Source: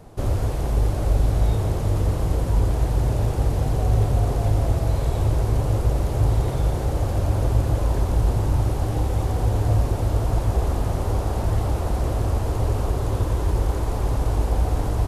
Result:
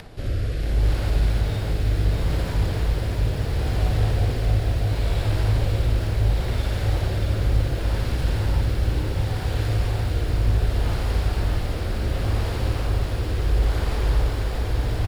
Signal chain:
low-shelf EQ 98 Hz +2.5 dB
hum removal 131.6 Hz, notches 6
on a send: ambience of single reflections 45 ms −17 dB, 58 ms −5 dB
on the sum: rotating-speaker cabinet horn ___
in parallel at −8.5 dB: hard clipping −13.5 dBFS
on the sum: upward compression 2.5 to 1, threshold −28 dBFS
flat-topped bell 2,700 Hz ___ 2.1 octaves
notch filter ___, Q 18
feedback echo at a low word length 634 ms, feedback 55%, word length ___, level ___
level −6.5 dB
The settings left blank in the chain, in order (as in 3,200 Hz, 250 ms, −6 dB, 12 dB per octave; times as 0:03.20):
0.7 Hz, +10 dB, 6,100 Hz, 7 bits, −4 dB